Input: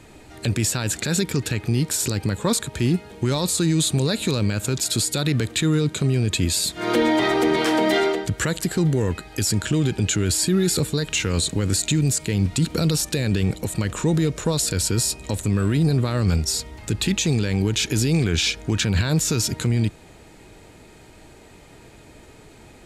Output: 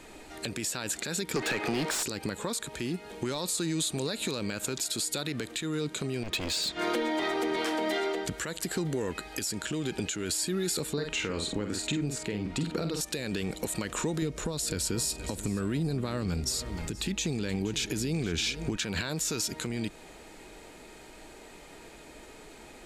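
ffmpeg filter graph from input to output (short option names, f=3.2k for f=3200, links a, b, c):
-filter_complex "[0:a]asettb=1/sr,asplit=3[a][b][c];[a]atrim=end=1.364[d];[b]atrim=start=1.36:end=2.03,asetpts=PTS-STARTPTS,afade=t=in:d=0.004:c=qsin,afade=t=out:st=0.666:d=0.004:c=qsin,highpass=f=89:w=0.5412,highpass=f=89:w=1.3066,asplit=2[e][f];[f]highpass=f=720:p=1,volume=25dB,asoftclip=type=tanh:threshold=-11dB[g];[e][g]amix=inputs=2:normalize=0,lowpass=f=1.7k:p=1,volume=-6dB[h];[c]atrim=start=2.026[i];[d][h]acrossfade=d=0.004:c1=hsin:c2=qsin[j];[j][i]acrossfade=d=0.004:c1=qsin:c2=hsin,asettb=1/sr,asplit=3[k][l][m];[k]atrim=end=6.234[n];[l]atrim=start=6.23:end=6.79,asetpts=PTS-STARTPTS,afade=t=in:d=0.004:c=qsin,afade=t=out:st=0.556:d=0.004:c=qsin,lowpass=4.8k,asoftclip=type=hard:threshold=-23.5dB[o];[m]atrim=start=6.786[p];[n][o]acrossfade=d=0.004:c1=hsin:c2=qsin[q];[q][p]acrossfade=d=0.004:c1=qsin:c2=hsin,asettb=1/sr,asplit=3[r][s][t];[r]atrim=end=10.934[u];[s]atrim=start=10.93:end=13.01,asetpts=PTS-STARTPTS,afade=t=in:d=0.004:c=qsin,afade=t=out:st=2.076:d=0.004:c=qsin,lowpass=f=1.9k:p=1,asplit=2[v][w];[w]adelay=48,volume=-6dB[x];[v][x]amix=inputs=2:normalize=0,atrim=end_sample=91728[y];[t]atrim=start=13.006[z];[u][y]acrossfade=d=0.004:c1=hsin:c2=qsin[aa];[aa][z]acrossfade=d=0.004:c1=qsin:c2=hsin,asettb=1/sr,asplit=3[ab][ac][ad];[ab]atrim=end=14.224[ae];[ac]atrim=start=14.22:end=18.76,asetpts=PTS-STARTPTS,afade=t=in:d=0.004:c=qsin,afade=t=out:st=4.536:d=0.004:c=qsin,lowshelf=f=280:g=9.5,aecho=1:1:473:0.141,atrim=end_sample=200214[af];[ad]atrim=start=18.756[ag];[ae][af]acrossfade=d=0.004:c1=hsin:c2=qsin[ah];[ah][ag]acrossfade=d=0.004:c1=qsin:c2=hsin,equalizer=f=100:w=0.94:g=-15,acompressor=threshold=-27dB:ratio=6,alimiter=limit=-19.5dB:level=0:latency=1:release=272"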